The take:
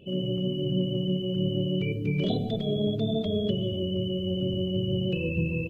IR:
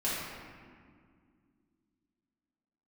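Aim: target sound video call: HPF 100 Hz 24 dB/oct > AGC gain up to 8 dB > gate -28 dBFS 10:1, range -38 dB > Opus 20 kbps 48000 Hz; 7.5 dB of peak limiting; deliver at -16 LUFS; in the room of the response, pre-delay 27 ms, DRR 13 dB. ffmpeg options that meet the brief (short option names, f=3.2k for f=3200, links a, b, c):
-filter_complex "[0:a]alimiter=limit=-22.5dB:level=0:latency=1,asplit=2[a][b];[1:a]atrim=start_sample=2205,adelay=27[c];[b][c]afir=irnorm=-1:irlink=0,volume=-21dB[d];[a][d]amix=inputs=2:normalize=0,highpass=f=100:w=0.5412,highpass=f=100:w=1.3066,dynaudnorm=m=8dB,agate=range=-38dB:threshold=-28dB:ratio=10,volume=16dB" -ar 48000 -c:a libopus -b:a 20k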